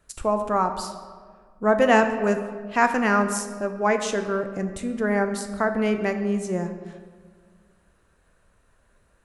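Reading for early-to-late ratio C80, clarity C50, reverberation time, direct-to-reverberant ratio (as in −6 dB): 10.0 dB, 9.0 dB, 1.7 s, 7.0 dB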